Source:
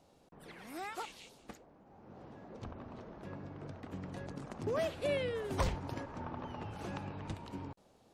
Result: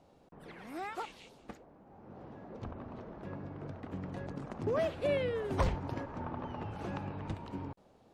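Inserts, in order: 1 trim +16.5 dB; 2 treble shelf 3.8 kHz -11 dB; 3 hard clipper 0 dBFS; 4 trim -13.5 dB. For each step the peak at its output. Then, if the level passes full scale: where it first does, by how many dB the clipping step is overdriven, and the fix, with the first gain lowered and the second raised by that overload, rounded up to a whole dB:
-4.0 dBFS, -4.0 dBFS, -4.0 dBFS, -17.5 dBFS; nothing clips

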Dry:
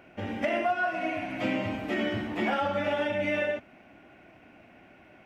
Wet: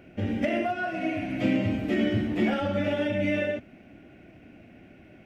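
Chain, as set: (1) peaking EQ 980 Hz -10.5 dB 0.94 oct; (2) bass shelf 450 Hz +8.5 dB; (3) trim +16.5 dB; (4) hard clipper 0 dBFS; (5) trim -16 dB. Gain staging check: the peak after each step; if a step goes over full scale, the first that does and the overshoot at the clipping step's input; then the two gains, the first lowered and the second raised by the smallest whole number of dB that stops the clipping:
-18.5 dBFS, -13.0 dBFS, +3.5 dBFS, 0.0 dBFS, -16.0 dBFS; step 3, 3.5 dB; step 3 +12.5 dB, step 5 -12 dB

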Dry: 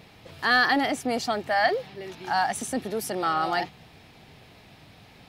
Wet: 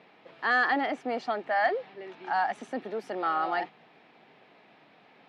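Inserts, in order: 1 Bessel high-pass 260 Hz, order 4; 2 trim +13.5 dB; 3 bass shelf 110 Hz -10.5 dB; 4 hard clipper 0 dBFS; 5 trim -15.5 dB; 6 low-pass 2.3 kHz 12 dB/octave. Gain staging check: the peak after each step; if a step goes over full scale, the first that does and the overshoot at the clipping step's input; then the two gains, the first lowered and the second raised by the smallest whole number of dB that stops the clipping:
-9.5 dBFS, +4.0 dBFS, +4.0 dBFS, 0.0 dBFS, -15.5 dBFS, -15.5 dBFS; step 2, 4.0 dB; step 2 +9.5 dB, step 5 -11.5 dB

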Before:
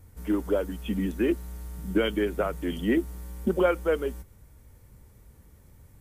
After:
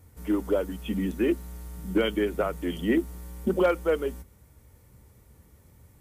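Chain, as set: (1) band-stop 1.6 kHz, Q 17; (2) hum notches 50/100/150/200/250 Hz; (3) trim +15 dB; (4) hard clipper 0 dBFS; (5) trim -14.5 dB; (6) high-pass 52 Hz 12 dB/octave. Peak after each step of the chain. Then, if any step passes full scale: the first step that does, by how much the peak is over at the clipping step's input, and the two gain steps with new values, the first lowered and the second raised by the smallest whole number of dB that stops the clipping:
-11.0 dBFS, -11.0 dBFS, +4.0 dBFS, 0.0 dBFS, -14.5 dBFS, -13.5 dBFS; step 3, 4.0 dB; step 3 +11 dB, step 5 -10.5 dB

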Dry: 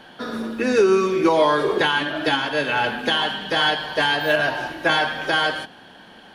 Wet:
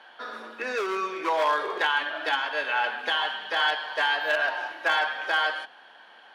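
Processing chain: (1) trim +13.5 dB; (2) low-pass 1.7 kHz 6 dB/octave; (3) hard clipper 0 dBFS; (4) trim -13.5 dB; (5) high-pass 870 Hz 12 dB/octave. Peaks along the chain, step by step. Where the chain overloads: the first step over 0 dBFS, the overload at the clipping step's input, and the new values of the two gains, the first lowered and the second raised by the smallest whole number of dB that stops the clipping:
+7.0 dBFS, +6.0 dBFS, 0.0 dBFS, -13.5 dBFS, -11.5 dBFS; step 1, 6.0 dB; step 1 +7.5 dB, step 4 -7.5 dB

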